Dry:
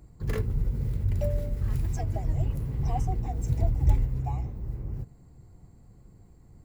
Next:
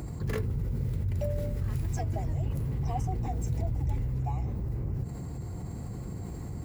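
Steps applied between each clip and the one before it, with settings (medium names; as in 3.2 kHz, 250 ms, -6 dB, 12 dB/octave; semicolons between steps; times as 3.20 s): high-pass 59 Hz 12 dB/octave; level flattener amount 70%; trim -7.5 dB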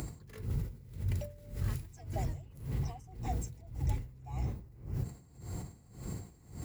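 treble shelf 2 kHz +9 dB; logarithmic tremolo 1.8 Hz, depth 22 dB; trim -1.5 dB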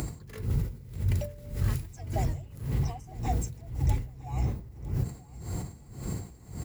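feedback delay 955 ms, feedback 26%, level -20 dB; trim +6.5 dB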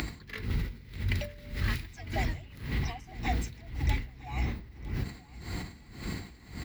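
ten-band graphic EQ 125 Hz -8 dB, 250 Hz +4 dB, 500 Hz -5 dB, 2 kHz +11 dB, 4 kHz +10 dB, 8 kHz -8 dB, 16 kHz -3 dB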